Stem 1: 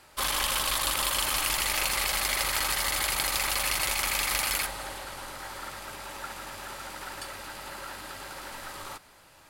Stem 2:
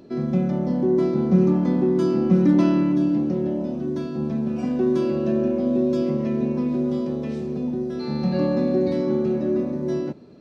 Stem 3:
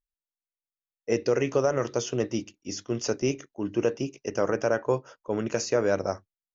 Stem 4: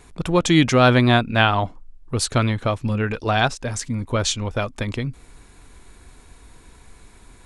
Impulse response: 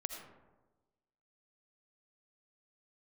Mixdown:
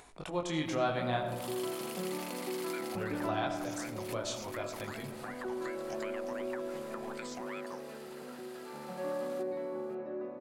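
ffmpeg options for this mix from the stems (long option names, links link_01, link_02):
-filter_complex "[0:a]adelay=450,volume=-12.5dB[link_01];[1:a]acrossover=split=480 2200:gain=0.0891 1 0.0891[link_02][link_03][link_04];[link_02][link_03][link_04]amix=inputs=3:normalize=0,adelay=650,volume=-7dB[link_05];[2:a]acompressor=threshold=-29dB:ratio=6,aeval=exprs='val(0)*sin(2*PI*1100*n/s+1100*0.75/2.7*sin(2*PI*2.7*n/s))':channel_layout=same,adelay=1650,volume=-3dB[link_06];[3:a]equalizer=frequency=690:width_type=o:width=0.99:gain=8,flanger=delay=19:depth=7.8:speed=0.62,volume=-10.5dB,asplit=3[link_07][link_08][link_09];[link_07]atrim=end=1.35,asetpts=PTS-STARTPTS,afade=type=out:start_time=1.346:duration=0.004:curve=hsin[link_10];[link_08]atrim=start=1.35:end=2.95,asetpts=PTS-STARTPTS,volume=0[link_11];[link_09]atrim=start=2.95,asetpts=PTS-STARTPTS,afade=type=in:duration=0.004:curve=hsin[link_12];[link_10][link_11][link_12]concat=n=3:v=0:a=1,asplit=3[link_13][link_14][link_15];[link_14]volume=-8dB[link_16];[link_15]apad=whole_len=438645[link_17];[link_01][link_17]sidechaincompress=threshold=-43dB:ratio=8:attack=7.6:release=121[link_18];[link_18][link_06][link_13]amix=inputs=3:normalize=0,highpass=frequency=590:poles=1,acompressor=threshold=-42dB:ratio=6,volume=0dB[link_19];[4:a]atrim=start_sample=2205[link_20];[link_16][link_20]afir=irnorm=-1:irlink=0[link_21];[link_05][link_19][link_21]amix=inputs=3:normalize=0,acompressor=mode=upward:threshold=-51dB:ratio=2.5"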